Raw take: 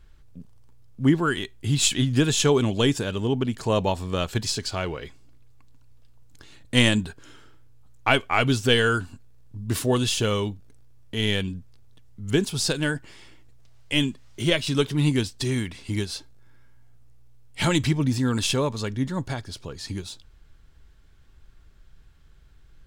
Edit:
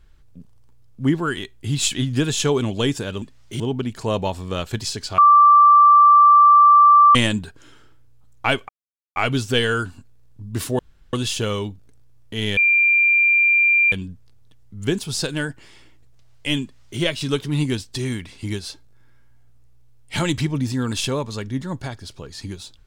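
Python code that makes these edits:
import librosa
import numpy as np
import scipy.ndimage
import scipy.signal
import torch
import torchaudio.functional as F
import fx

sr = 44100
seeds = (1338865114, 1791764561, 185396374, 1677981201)

y = fx.edit(x, sr, fx.bleep(start_s=4.8, length_s=1.97, hz=1170.0, db=-7.5),
    fx.insert_silence(at_s=8.31, length_s=0.47),
    fx.insert_room_tone(at_s=9.94, length_s=0.34),
    fx.insert_tone(at_s=11.38, length_s=1.35, hz=2380.0, db=-12.5),
    fx.duplicate(start_s=14.09, length_s=0.38, to_s=3.22), tone=tone)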